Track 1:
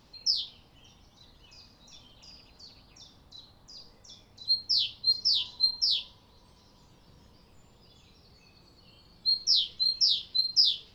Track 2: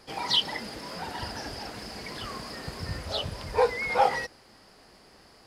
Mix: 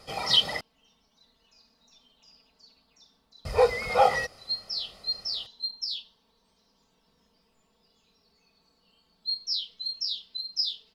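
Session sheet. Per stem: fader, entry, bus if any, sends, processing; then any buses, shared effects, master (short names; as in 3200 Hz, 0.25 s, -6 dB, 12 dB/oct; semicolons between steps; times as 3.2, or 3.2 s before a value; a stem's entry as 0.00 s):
-9.0 dB, 0.00 s, no send, low shelf 160 Hz -11 dB; comb 4.5 ms, depth 82%
+1.0 dB, 0.00 s, muted 0.61–3.45, no send, notch 1700 Hz, Q 6.9; comb 1.6 ms, depth 56%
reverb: off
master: dry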